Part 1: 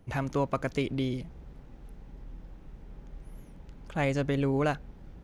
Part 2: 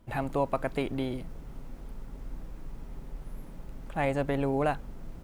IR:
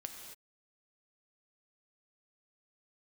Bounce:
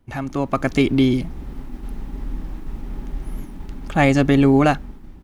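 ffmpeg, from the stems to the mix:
-filter_complex "[0:a]agate=range=-8dB:threshold=-47dB:ratio=16:detection=peak,bandreject=f=440:w=12,volume=2.5dB[a];[1:a]equalizer=f=100:t=o:w=0.67:g=-11,equalizer=f=250:t=o:w=0.67:g=5,equalizer=f=630:t=o:w=0.67:g=-7,equalizer=f=6.3k:t=o:w=0.67:g=-4,volume=-1,adelay=1.9,volume=-5dB[b];[a][b]amix=inputs=2:normalize=0,dynaudnorm=f=160:g=7:m=11.5dB"

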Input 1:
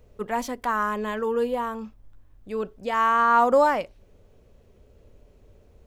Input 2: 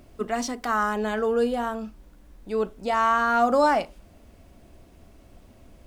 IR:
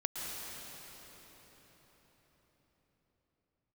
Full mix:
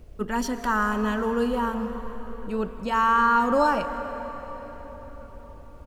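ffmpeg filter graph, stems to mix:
-filter_complex "[0:a]alimiter=limit=-13.5dB:level=0:latency=1:release=467,volume=-4dB,asplit=2[a][b];[b]volume=-6dB[c];[1:a]adelay=0.4,volume=-6.5dB,asplit=2[d][e];[e]volume=-21dB[f];[2:a]atrim=start_sample=2205[g];[c][f]amix=inputs=2:normalize=0[h];[h][g]afir=irnorm=-1:irlink=0[i];[a][d][i]amix=inputs=3:normalize=0,lowshelf=f=110:g=10"

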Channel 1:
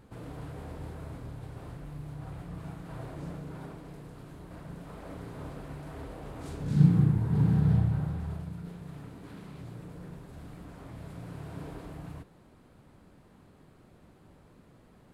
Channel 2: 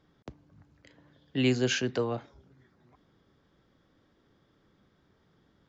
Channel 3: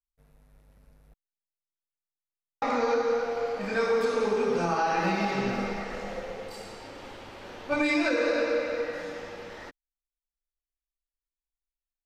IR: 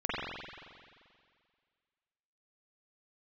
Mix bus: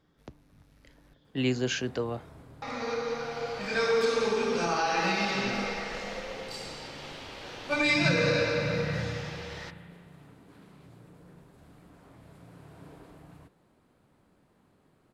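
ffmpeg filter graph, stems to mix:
-filter_complex "[0:a]lowshelf=f=130:g=-8,adelay=1250,volume=-6dB[a];[1:a]volume=-2dB,asplit=2[b][c];[2:a]equalizer=f=4.3k:t=o:w=2.3:g=10.5,volume=-4.5dB,asplit=2[d][e];[e]volume=-17.5dB[f];[c]apad=whole_len=531817[g];[d][g]sidechaincompress=threshold=-43dB:ratio=8:attack=7.5:release=1290[h];[3:a]atrim=start_sample=2205[i];[f][i]afir=irnorm=-1:irlink=0[j];[a][b][h][j]amix=inputs=4:normalize=0"

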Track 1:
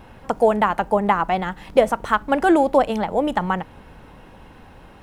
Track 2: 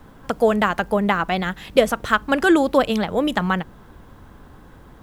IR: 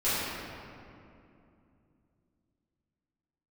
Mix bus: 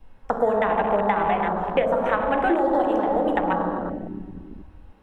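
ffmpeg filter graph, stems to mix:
-filter_complex "[0:a]adynamicequalizer=threshold=0.0126:dfrequency=1400:dqfactor=3.1:tfrequency=1400:tqfactor=3.1:attack=5:release=100:ratio=0.375:range=3.5:mode=cutabove:tftype=bell,volume=-1.5dB,asplit=2[a][b];[b]volume=-11dB[c];[1:a]bass=f=250:g=0,treble=f=4k:g=-7,volume=-1,volume=-5.5dB,asplit=2[d][e];[e]volume=-22dB[f];[2:a]atrim=start_sample=2205[g];[c][f]amix=inputs=2:normalize=0[h];[h][g]afir=irnorm=-1:irlink=0[i];[a][d][i]amix=inputs=3:normalize=0,afwtdn=0.0708,acrossover=split=290|1200|2900[j][k][l][m];[j]acompressor=threshold=-31dB:ratio=4[n];[k]acompressor=threshold=-20dB:ratio=4[o];[l]acompressor=threshold=-31dB:ratio=4[p];[m]acompressor=threshold=-47dB:ratio=4[q];[n][o][p][q]amix=inputs=4:normalize=0"

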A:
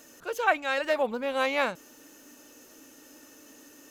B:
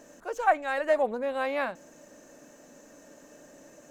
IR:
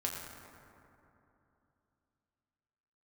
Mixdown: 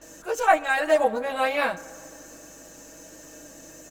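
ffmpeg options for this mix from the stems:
-filter_complex "[0:a]lowpass=3.1k,aeval=exprs='val(0)+0.00112*(sin(2*PI*50*n/s)+sin(2*PI*2*50*n/s)/2+sin(2*PI*3*50*n/s)/3+sin(2*PI*4*50*n/s)/4+sin(2*PI*5*50*n/s)/5)':c=same,volume=-2dB[a];[1:a]highshelf=f=3.9k:g=11.5,aecho=1:1:6.2:0.78,volume=-1,adelay=15,volume=0dB,asplit=2[b][c];[c]volume=-14.5dB[d];[2:a]atrim=start_sample=2205[e];[d][e]afir=irnorm=-1:irlink=0[f];[a][b][f]amix=inputs=3:normalize=0"

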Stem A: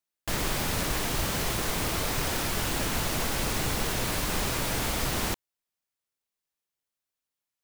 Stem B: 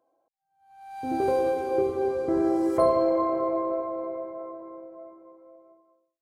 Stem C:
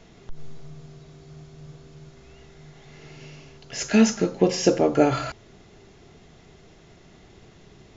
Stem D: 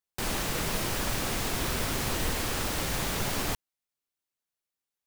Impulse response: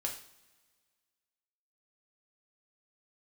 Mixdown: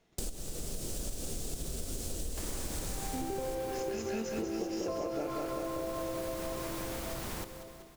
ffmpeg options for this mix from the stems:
-filter_complex "[0:a]equalizer=f=3.1k:w=0.58:g=-3.5,adelay=2100,volume=-3dB,asplit=2[a][b];[b]volume=-18dB[c];[1:a]adelay=2100,volume=-1dB[d];[2:a]agate=range=-15dB:threshold=-48dB:ratio=16:detection=peak,bass=f=250:g=-5,treble=f=4k:g=-1,volume=-3dB,asplit=3[e][f][g];[f]volume=-5.5dB[h];[3:a]equalizer=f=125:t=o:w=1:g=-10,equalizer=f=500:t=o:w=1:g=5,equalizer=f=1k:t=o:w=1:g=-12,equalizer=f=2k:t=o:w=1:g=-11,equalizer=f=8k:t=o:w=1:g=9,volume=-3.5dB[i];[g]apad=whole_len=223584[j];[i][j]sidechaincompress=threshold=-48dB:ratio=3:attack=16:release=614[k];[a][e]amix=inputs=2:normalize=0,acompressor=threshold=-37dB:ratio=3,volume=0dB[l];[d][k]amix=inputs=2:normalize=0,lowshelf=f=220:g=11,acompressor=threshold=-28dB:ratio=2,volume=0dB[m];[c][h]amix=inputs=2:normalize=0,aecho=0:1:191|382|573|764|955|1146|1337|1528|1719:1|0.58|0.336|0.195|0.113|0.0656|0.0381|0.0221|0.0128[n];[l][m][n]amix=inputs=3:normalize=0,acompressor=threshold=-33dB:ratio=6"

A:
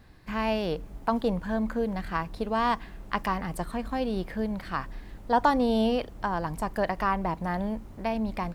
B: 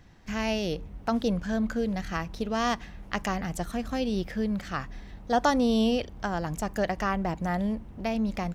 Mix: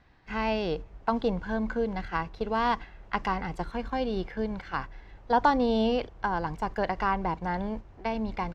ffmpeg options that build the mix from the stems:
-filter_complex "[0:a]agate=range=-8dB:threshold=-34dB:ratio=16:detection=peak,lowpass=f=6.2k:w=0.5412,lowpass=f=6.2k:w=1.3066,volume=-0.5dB,asplit=2[a][b];[1:a]acrossover=split=550 3200:gain=0.251 1 0.0891[c][d][e];[c][d][e]amix=inputs=3:normalize=0,adelay=1.1,volume=-1.5dB[f];[b]apad=whole_len=376938[g];[f][g]sidechaincompress=threshold=-29dB:ratio=8:attack=16:release=163[h];[a][h]amix=inputs=2:normalize=0"

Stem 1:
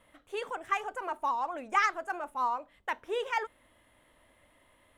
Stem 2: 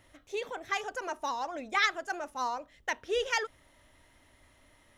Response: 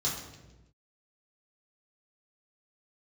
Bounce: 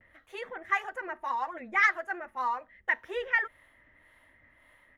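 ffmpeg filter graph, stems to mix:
-filter_complex "[0:a]acrossover=split=500[a][b];[a]aeval=exprs='val(0)*(1-1/2+1/2*cos(2*PI*1.8*n/s))':c=same[c];[b]aeval=exprs='val(0)*(1-1/2-1/2*cos(2*PI*1.8*n/s))':c=same[d];[c][d]amix=inputs=2:normalize=0,volume=0dB[e];[1:a]lowpass=f=1.9k:t=q:w=5.6,volume=-1,adelay=7.7,volume=-6.5dB[f];[e][f]amix=inputs=2:normalize=0,equalizer=f=8.2k:t=o:w=0.29:g=-9"

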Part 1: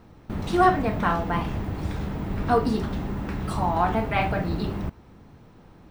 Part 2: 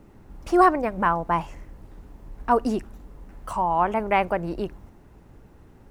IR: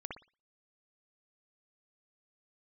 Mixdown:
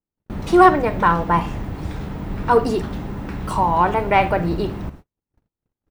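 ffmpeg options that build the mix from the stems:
-filter_complex "[0:a]volume=-5.5dB,asplit=2[a][b];[b]volume=-8.5dB[c];[1:a]adelay=0.9,volume=-0.5dB[d];[2:a]atrim=start_sample=2205[e];[c][e]afir=irnorm=-1:irlink=0[f];[a][d][f]amix=inputs=3:normalize=0,acontrast=21,agate=range=-47dB:threshold=-37dB:ratio=16:detection=peak"

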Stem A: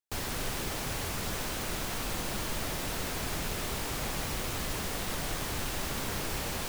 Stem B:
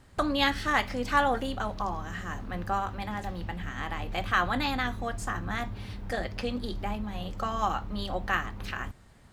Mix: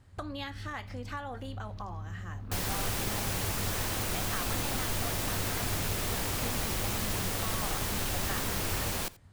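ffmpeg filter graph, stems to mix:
-filter_complex "[0:a]highshelf=f=8.3k:g=4.5,adelay=2400,volume=0.5dB,asplit=2[a][b];[b]volume=-21dB[c];[1:a]equalizer=f=94:w=2:g=13.5,acompressor=threshold=-28dB:ratio=6,volume=-7dB[d];[c]aecho=0:1:85:1[e];[a][d][e]amix=inputs=3:normalize=0"

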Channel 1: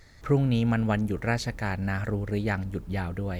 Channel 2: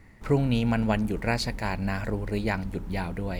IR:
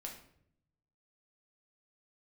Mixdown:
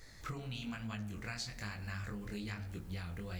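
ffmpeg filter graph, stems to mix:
-filter_complex "[0:a]highshelf=f=4.1k:g=8.5,volume=-3dB,asplit=2[a][b];[b]volume=-8dB[c];[1:a]lowshelf=f=100:g=-9,volume=-1,volume=-10dB,asplit=3[d][e][f];[e]volume=-10dB[g];[f]apad=whole_len=149722[h];[a][h]sidechaincompress=threshold=-41dB:ratio=8:attack=40:release=563[i];[2:a]atrim=start_sample=2205[j];[c][g]amix=inputs=2:normalize=0[k];[k][j]afir=irnorm=-1:irlink=0[l];[i][d][l]amix=inputs=3:normalize=0,flanger=delay=18:depth=6.8:speed=1.1,acompressor=threshold=-38dB:ratio=6"

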